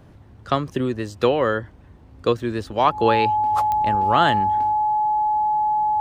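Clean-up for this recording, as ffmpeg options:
ffmpeg -i in.wav -af "adeclick=threshold=4,bandreject=frequency=850:width=30" out.wav

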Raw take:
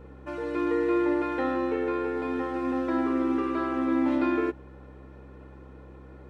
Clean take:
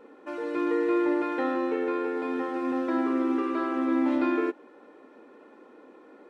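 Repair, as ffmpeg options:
ffmpeg -i in.wav -af "bandreject=frequency=65.7:width_type=h:width=4,bandreject=frequency=131.4:width_type=h:width=4,bandreject=frequency=197.1:width_type=h:width=4,bandreject=frequency=262.8:width_type=h:width=4,bandreject=frequency=328.5:width_type=h:width=4" out.wav

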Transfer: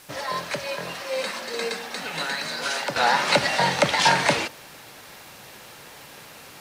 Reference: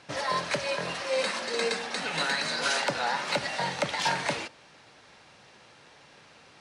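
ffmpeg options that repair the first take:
ffmpeg -i in.wav -af "afwtdn=0.0035,asetnsamples=nb_out_samples=441:pad=0,asendcmd='2.96 volume volume -9dB',volume=0dB" out.wav

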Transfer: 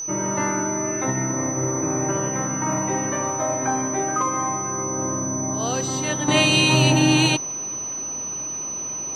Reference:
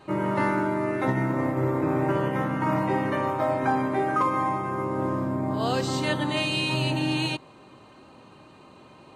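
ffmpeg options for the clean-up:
ffmpeg -i in.wav -af "bandreject=frequency=6000:width=30,asetnsamples=nb_out_samples=441:pad=0,asendcmd='6.28 volume volume -9dB',volume=0dB" out.wav

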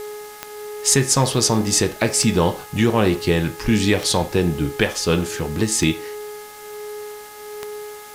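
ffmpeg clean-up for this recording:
ffmpeg -i in.wav -af "adeclick=threshold=4,bandreject=frequency=418.7:width_type=h:width=4,bandreject=frequency=837.4:width_type=h:width=4,bandreject=frequency=1256.1:width_type=h:width=4,bandreject=frequency=1674.8:width_type=h:width=4,bandreject=frequency=2093.5:width_type=h:width=4,bandreject=frequency=420:width=30,afwtdn=0.0079" out.wav

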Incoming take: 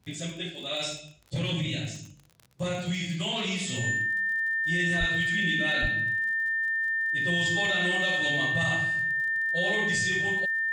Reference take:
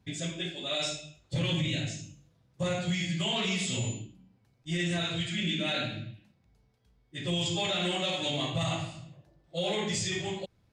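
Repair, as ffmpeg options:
ffmpeg -i in.wav -filter_complex "[0:a]adeclick=threshold=4,bandreject=frequency=1800:width=30,asplit=3[link_01][link_02][link_03];[link_01]afade=type=out:start_time=4.99:duration=0.02[link_04];[link_02]highpass=frequency=140:width=0.5412,highpass=frequency=140:width=1.3066,afade=type=in:start_time=4.99:duration=0.02,afade=type=out:start_time=5.11:duration=0.02[link_05];[link_03]afade=type=in:start_time=5.11:duration=0.02[link_06];[link_04][link_05][link_06]amix=inputs=3:normalize=0,asplit=3[link_07][link_08][link_09];[link_07]afade=type=out:start_time=5.81:duration=0.02[link_10];[link_08]highpass=frequency=140:width=0.5412,highpass=frequency=140:width=1.3066,afade=type=in:start_time=5.81:duration=0.02,afade=type=out:start_time=5.93:duration=0.02[link_11];[link_09]afade=type=in:start_time=5.93:duration=0.02[link_12];[link_10][link_11][link_12]amix=inputs=3:normalize=0" out.wav

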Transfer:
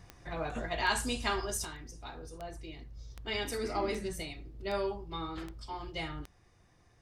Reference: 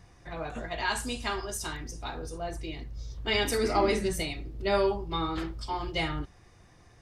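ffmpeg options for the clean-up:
ffmpeg -i in.wav -af "adeclick=threshold=4,asetnsamples=nb_out_samples=441:pad=0,asendcmd='1.65 volume volume 8dB',volume=0dB" out.wav

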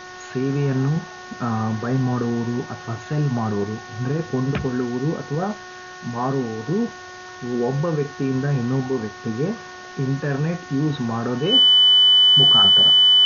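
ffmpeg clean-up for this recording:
ffmpeg -i in.wav -af "bandreject=frequency=365.6:width_type=h:width=4,bandreject=frequency=731.2:width_type=h:width=4,bandreject=frequency=1096.8:width_type=h:width=4,bandreject=frequency=1462.4:width_type=h:width=4,bandreject=frequency=1828:width_type=h:width=4,bandreject=frequency=3000:width=30,afwtdn=0.01" out.wav

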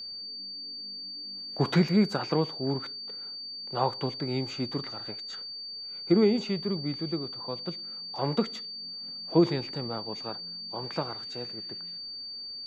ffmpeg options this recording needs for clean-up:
ffmpeg -i in.wav -af "bandreject=frequency=4600:width=30" out.wav

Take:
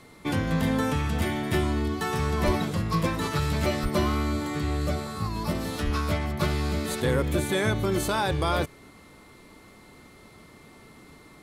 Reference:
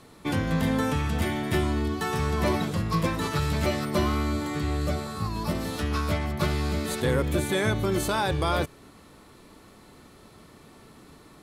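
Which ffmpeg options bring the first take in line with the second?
ffmpeg -i in.wav -filter_complex "[0:a]bandreject=frequency=2100:width=30,asplit=3[link_01][link_02][link_03];[link_01]afade=type=out:start_time=2.45:duration=0.02[link_04];[link_02]highpass=frequency=140:width=0.5412,highpass=frequency=140:width=1.3066,afade=type=in:start_time=2.45:duration=0.02,afade=type=out:start_time=2.57:duration=0.02[link_05];[link_03]afade=type=in:start_time=2.57:duration=0.02[link_06];[link_04][link_05][link_06]amix=inputs=3:normalize=0,asplit=3[link_07][link_08][link_09];[link_07]afade=type=out:start_time=3.82:duration=0.02[link_10];[link_08]highpass=frequency=140:width=0.5412,highpass=frequency=140:width=1.3066,afade=type=in:start_time=3.82:duration=0.02,afade=type=out:start_time=3.94:duration=0.02[link_11];[link_09]afade=type=in:start_time=3.94:duration=0.02[link_12];[link_10][link_11][link_12]amix=inputs=3:normalize=0,asplit=3[link_13][link_14][link_15];[link_13]afade=type=out:start_time=5.84:duration=0.02[link_16];[link_14]highpass=frequency=140:width=0.5412,highpass=frequency=140:width=1.3066,afade=type=in:start_time=5.84:duration=0.02,afade=type=out:start_time=5.96:duration=0.02[link_17];[link_15]afade=type=in:start_time=5.96:duration=0.02[link_18];[link_16][link_17][link_18]amix=inputs=3:normalize=0" out.wav

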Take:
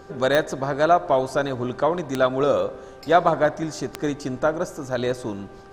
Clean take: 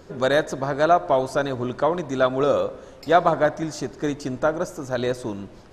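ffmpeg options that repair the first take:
ffmpeg -i in.wav -af "adeclick=threshold=4,bandreject=frequency=391.7:width_type=h:width=4,bandreject=frequency=783.4:width_type=h:width=4,bandreject=frequency=1175.1:width_type=h:width=4,bandreject=frequency=1566.8:width_type=h:width=4" out.wav

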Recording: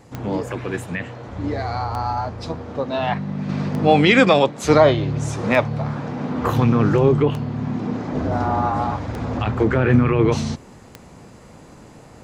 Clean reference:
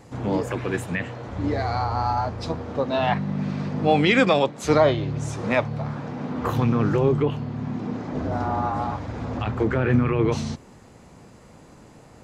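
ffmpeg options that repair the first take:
ffmpeg -i in.wav -af "adeclick=threshold=4,asetnsamples=nb_out_samples=441:pad=0,asendcmd='3.49 volume volume -4.5dB',volume=0dB" out.wav

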